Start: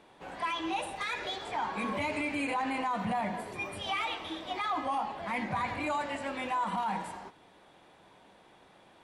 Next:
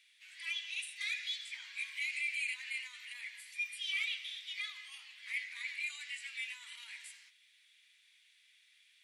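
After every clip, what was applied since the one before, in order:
elliptic high-pass filter 2,100 Hz, stop band 80 dB
level +1 dB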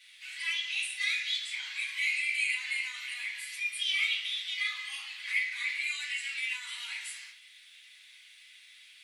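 in parallel at +1.5 dB: downward compressor, threshold −50 dBFS, peak gain reduction 16.5 dB
on the sum: convolution reverb RT60 0.40 s, pre-delay 4 ms, DRR −6.5 dB
level −3 dB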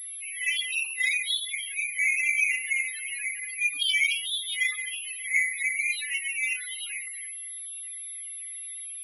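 spectral peaks only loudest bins 8
switching amplifier with a slow clock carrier 11,000 Hz
level +7.5 dB

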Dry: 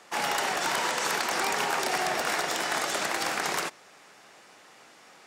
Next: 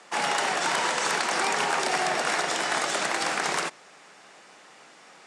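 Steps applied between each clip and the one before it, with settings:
elliptic band-pass filter 140–9,400 Hz, stop band 40 dB
level +2.5 dB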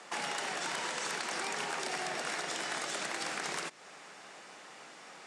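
dynamic equaliser 870 Hz, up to −4 dB, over −39 dBFS, Q 0.84
downward compressor 2.5 to 1, threshold −38 dBFS, peak gain reduction 9.5 dB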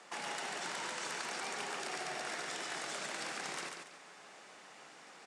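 repeating echo 142 ms, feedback 31%, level −4.5 dB
level −5.5 dB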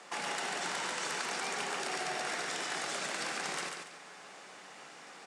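convolution reverb, pre-delay 3 ms, DRR 11 dB
level +4 dB

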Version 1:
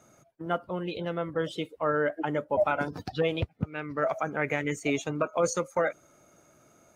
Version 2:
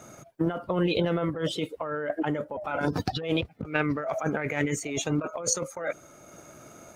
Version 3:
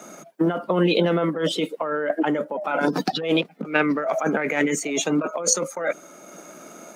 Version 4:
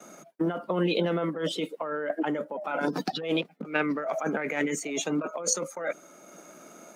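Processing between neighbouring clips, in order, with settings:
transient designer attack +3 dB, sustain −3 dB; compressor whose output falls as the input rises −34 dBFS, ratio −1; level +5.5 dB
Butterworth high-pass 170 Hz 48 dB per octave; level +6.5 dB
noise gate with hold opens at −36 dBFS; level −6.5 dB

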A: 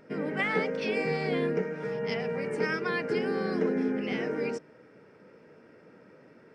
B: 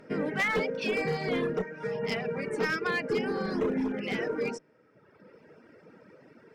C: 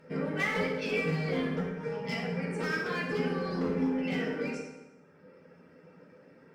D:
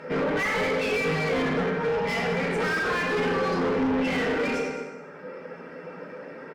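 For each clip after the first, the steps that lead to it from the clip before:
harmonic generator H 4 −27 dB, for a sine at −14.5 dBFS; hard clipping −24.5 dBFS, distortion −15 dB; reverb reduction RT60 1.3 s; level +3 dB
convolution reverb RT60 1.1 s, pre-delay 3 ms, DRR −4 dB; level −7 dB
mid-hump overdrive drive 28 dB, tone 1,700 Hz, clips at −17.5 dBFS; single-tap delay 214 ms −14 dB

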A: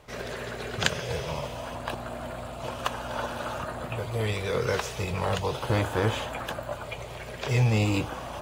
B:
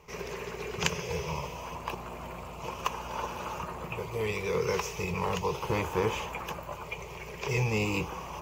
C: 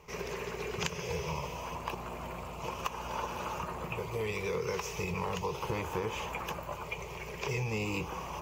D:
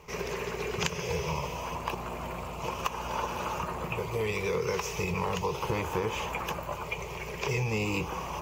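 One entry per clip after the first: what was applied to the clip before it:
EQ curve with evenly spaced ripples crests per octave 0.78, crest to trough 11 dB; level −4 dB
downward compressor 4 to 1, threshold −31 dBFS, peak gain reduction 8.5 dB
surface crackle 28 per second −47 dBFS; level +4 dB

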